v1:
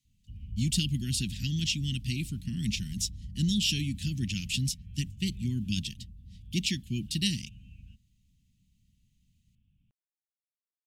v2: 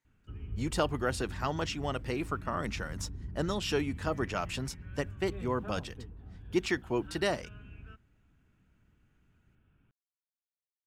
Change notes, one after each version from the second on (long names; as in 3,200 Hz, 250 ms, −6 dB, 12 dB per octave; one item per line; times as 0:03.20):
speech −10.0 dB
master: remove elliptic band-stop filter 210–3,000 Hz, stop band 50 dB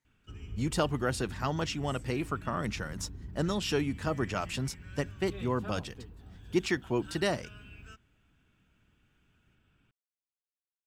speech: add bass and treble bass +7 dB, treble +2 dB
background: remove high-frequency loss of the air 470 metres
master: add low-shelf EQ 190 Hz −3 dB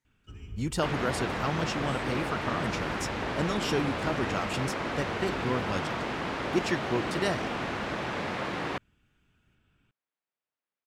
second sound: unmuted